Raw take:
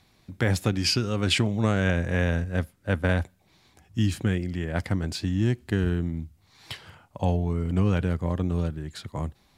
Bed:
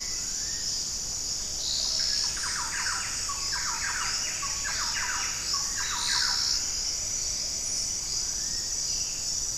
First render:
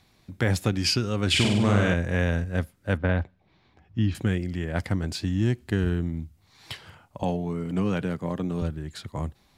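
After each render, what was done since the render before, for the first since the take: 1.29–1.94 flutter echo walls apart 8.4 m, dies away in 0.82 s; 2.97–4.15 air absorption 250 m; 7.23–8.62 HPF 130 Hz 24 dB/oct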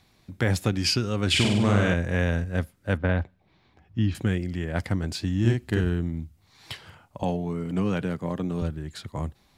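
5.4–5.81 doubler 43 ms -2.5 dB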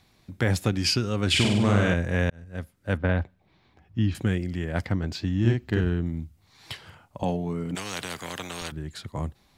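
2.3–3 fade in; 4.84–6.06 bell 10000 Hz -15 dB; 7.75–8.72 spectral compressor 4:1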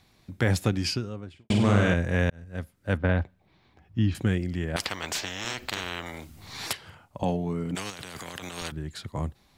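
0.6–1.5 studio fade out; 4.76–6.73 spectral compressor 10:1; 7.9–8.58 negative-ratio compressor -40 dBFS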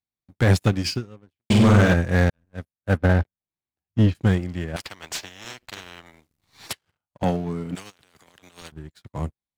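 sample leveller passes 3; upward expander 2.5:1, over -32 dBFS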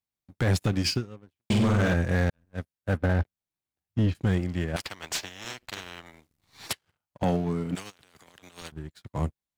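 limiter -17.5 dBFS, peak gain reduction 10 dB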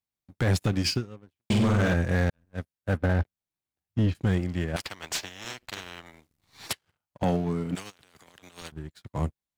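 nothing audible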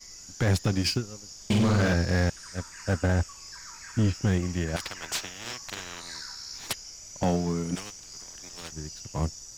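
add bed -14 dB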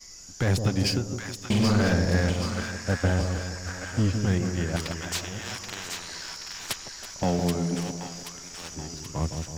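reverse delay 0.688 s, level -13.5 dB; split-band echo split 890 Hz, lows 0.16 s, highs 0.779 s, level -5.5 dB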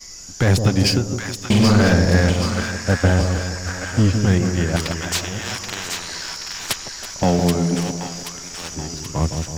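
gain +8 dB

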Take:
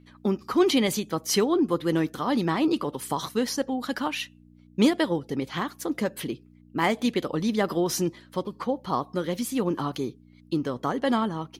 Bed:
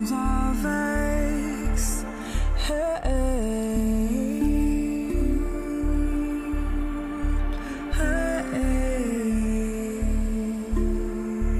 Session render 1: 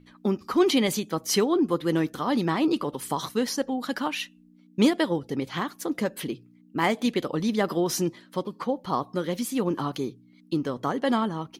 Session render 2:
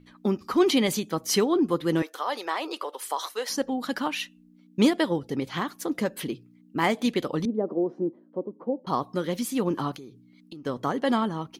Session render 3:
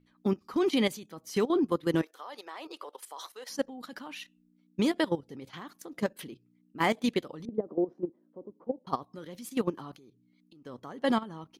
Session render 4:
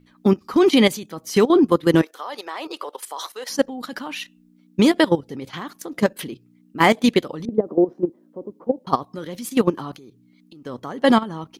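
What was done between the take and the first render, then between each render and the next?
de-hum 60 Hz, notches 2
2.02–3.5 HPF 480 Hz 24 dB/oct; 7.45–8.87 Butterworth band-pass 370 Hz, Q 0.93; 9.95–10.66 compressor 8:1, threshold -39 dBFS
level quantiser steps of 12 dB; upward expander 1.5:1, over -38 dBFS
gain +11.5 dB

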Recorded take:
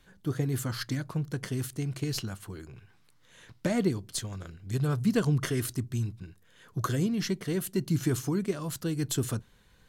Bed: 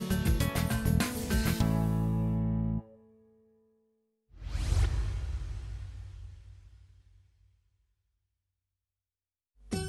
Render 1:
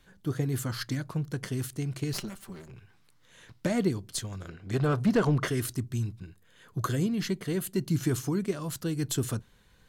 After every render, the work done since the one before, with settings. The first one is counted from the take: 2.13–2.71 minimum comb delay 5.1 ms; 4.48–5.48 overdrive pedal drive 20 dB, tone 1100 Hz, clips at -13.5 dBFS; 6.21–7.74 notch 5600 Hz, Q 8.1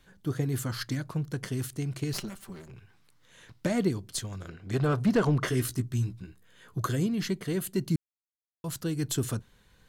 5.46–6.79 doubler 16 ms -7 dB; 7.96–8.64 mute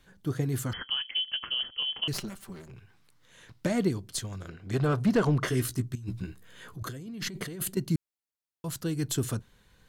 0.73–2.08 inverted band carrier 3200 Hz; 5.95–7.77 negative-ratio compressor -37 dBFS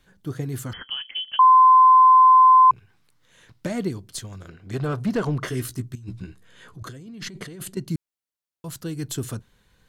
1.39–2.71 bleep 1030 Hz -9 dBFS; 5.99–7.88 LPF 9700 Hz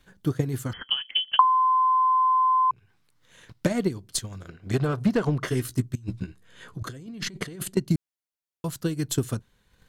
compressor 4:1, threshold -21 dBFS, peak gain reduction 8.5 dB; transient shaper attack +7 dB, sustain -4 dB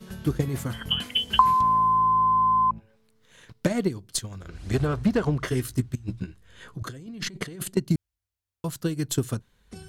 add bed -9 dB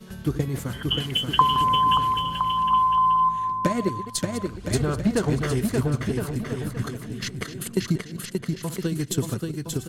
reverse delay 0.164 s, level -13 dB; bouncing-ball echo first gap 0.58 s, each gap 0.75×, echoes 5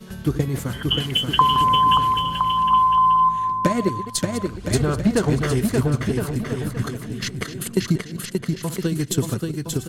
gain +3.5 dB; limiter -3 dBFS, peak gain reduction 2.5 dB

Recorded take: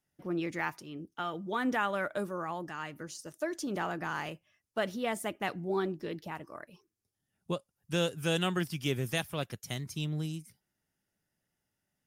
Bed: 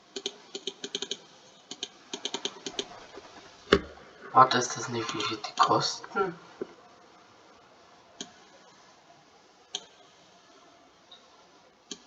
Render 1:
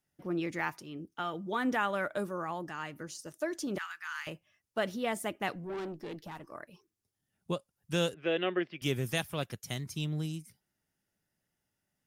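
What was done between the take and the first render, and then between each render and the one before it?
3.78–4.27 inverse Chebyshev high-pass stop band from 650 Hz; 5.55–6.51 tube stage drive 35 dB, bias 0.4; 8.14–8.82 speaker cabinet 360–2900 Hz, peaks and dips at 360 Hz +7 dB, 580 Hz +6 dB, 910 Hz -8 dB, 1400 Hz -4 dB, 2000 Hz +4 dB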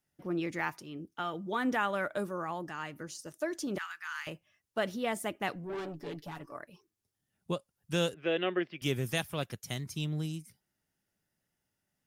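5.72–6.58 comb 7 ms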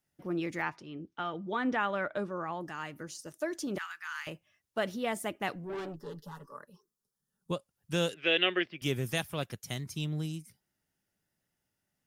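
0.62–2.61 LPF 4300 Hz; 5.96–7.51 fixed phaser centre 460 Hz, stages 8; 8.09–8.66 weighting filter D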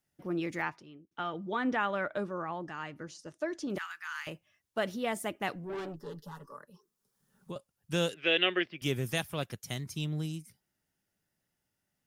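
0.64–1.11 fade out; 2.42–3.7 air absorption 85 m; 6.47–7.56 three-band squash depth 70%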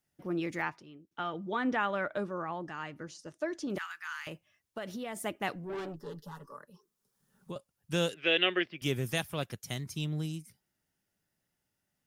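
4.13–5.18 compressor, threshold -35 dBFS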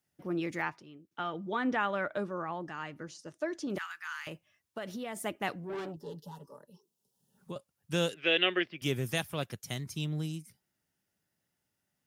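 HPF 60 Hz; 5.91–7.38 spectral gain 1000–2600 Hz -12 dB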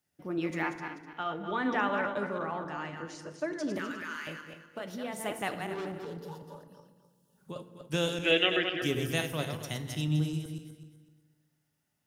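regenerating reverse delay 0.126 s, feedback 51%, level -6 dB; FDN reverb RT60 1.4 s, low-frequency decay 1.3×, high-frequency decay 0.55×, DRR 9.5 dB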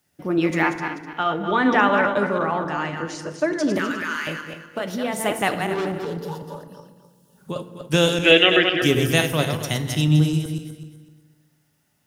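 gain +12 dB; limiter -1 dBFS, peak gain reduction 2 dB

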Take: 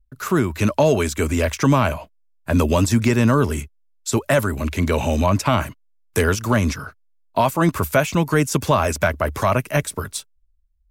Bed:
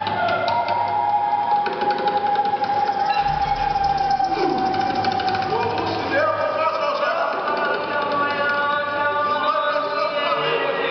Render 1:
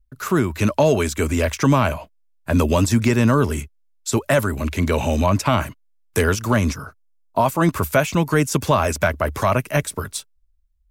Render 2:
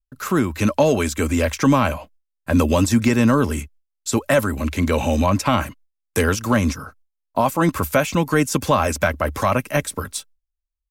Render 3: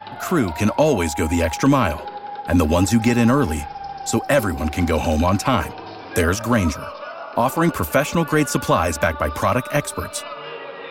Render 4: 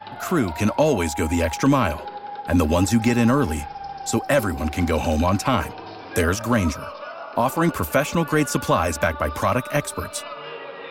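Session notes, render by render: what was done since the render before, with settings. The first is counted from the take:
6.72–7.46 band shelf 2700 Hz -8 dB
gate with hold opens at -51 dBFS; comb 3.8 ms, depth 33%
add bed -12 dB
gain -2 dB

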